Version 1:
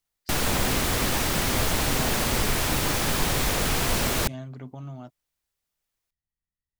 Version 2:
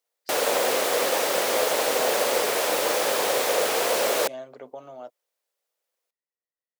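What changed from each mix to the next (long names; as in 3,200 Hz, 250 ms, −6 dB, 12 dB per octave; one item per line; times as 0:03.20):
master: add high-pass with resonance 510 Hz, resonance Q 3.9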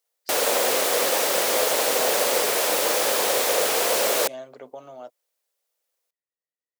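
master: add high-shelf EQ 4,100 Hz +5.5 dB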